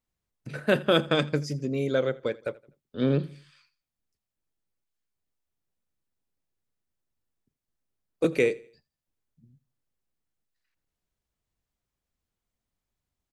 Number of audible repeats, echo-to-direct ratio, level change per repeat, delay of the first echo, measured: 2, -21.5 dB, -8.5 dB, 83 ms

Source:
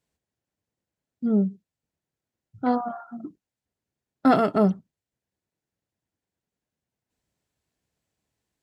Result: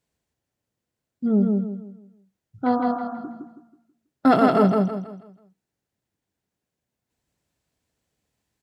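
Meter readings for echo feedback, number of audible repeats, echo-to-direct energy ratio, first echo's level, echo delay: 35%, 4, -2.5 dB, -3.0 dB, 0.162 s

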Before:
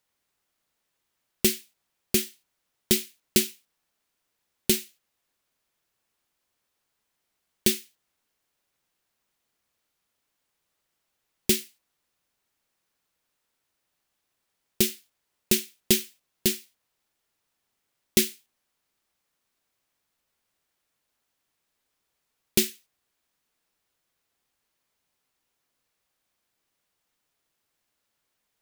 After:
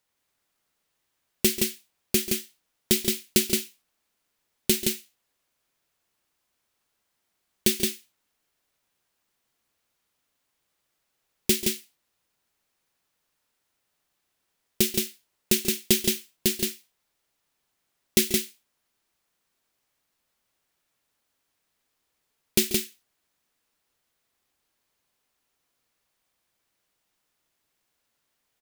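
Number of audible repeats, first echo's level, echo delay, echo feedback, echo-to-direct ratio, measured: 2, -14.0 dB, 0.136 s, no steady repeat, -3.0 dB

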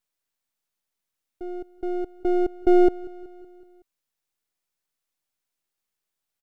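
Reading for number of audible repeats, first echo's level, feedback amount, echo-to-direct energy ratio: 4, -20.5 dB, 59%, -18.5 dB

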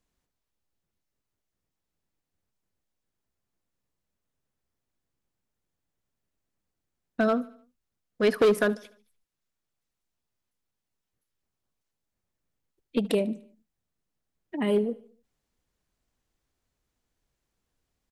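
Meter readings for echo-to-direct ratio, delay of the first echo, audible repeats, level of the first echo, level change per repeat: -19.5 dB, 74 ms, 3, -20.5 dB, -6.5 dB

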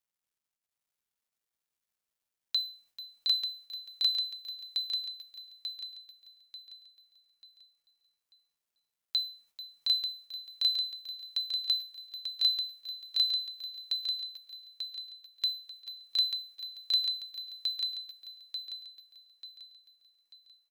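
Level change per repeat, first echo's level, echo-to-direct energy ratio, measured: no steady repeat, -3.0 dB, -0.5 dB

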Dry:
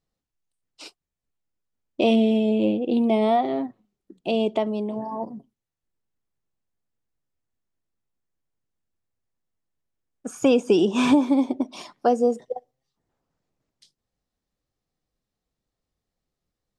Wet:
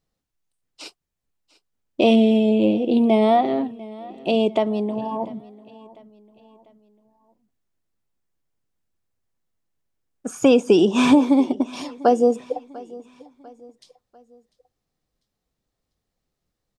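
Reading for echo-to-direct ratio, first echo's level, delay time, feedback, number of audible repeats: -20.0 dB, -21.0 dB, 0.696 s, 44%, 2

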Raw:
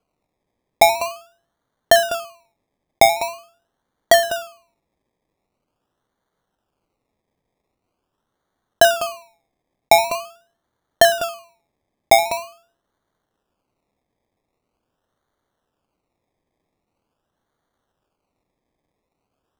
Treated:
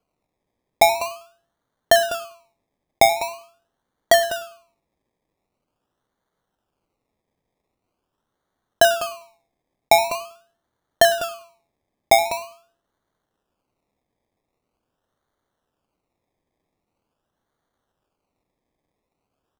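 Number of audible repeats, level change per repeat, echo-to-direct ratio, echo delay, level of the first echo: 2, -10.5 dB, -21.5 dB, 99 ms, -22.0 dB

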